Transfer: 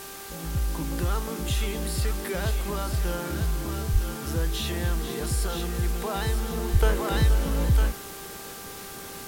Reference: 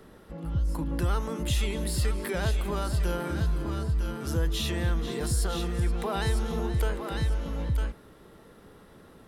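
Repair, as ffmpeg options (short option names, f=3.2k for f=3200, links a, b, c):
-filter_complex "[0:a]bandreject=f=394.3:t=h:w=4,bandreject=f=788.6:t=h:w=4,bandreject=f=1.1829k:t=h:w=4,bandreject=f=1.5772k:t=h:w=4,asplit=3[a][b][c];[a]afade=t=out:st=3.92:d=0.02[d];[b]highpass=f=140:w=0.5412,highpass=f=140:w=1.3066,afade=t=in:st=3.92:d=0.02,afade=t=out:st=4.04:d=0.02[e];[c]afade=t=in:st=4.04:d=0.02[f];[d][e][f]amix=inputs=3:normalize=0,asplit=3[g][h][i];[g]afade=t=out:st=6.72:d=0.02[j];[h]highpass=f=140:w=0.5412,highpass=f=140:w=1.3066,afade=t=in:st=6.72:d=0.02,afade=t=out:st=6.84:d=0.02[k];[i]afade=t=in:st=6.84:d=0.02[l];[j][k][l]amix=inputs=3:normalize=0,afwtdn=0.0089,asetnsamples=n=441:p=0,asendcmd='6.82 volume volume -6.5dB',volume=0dB"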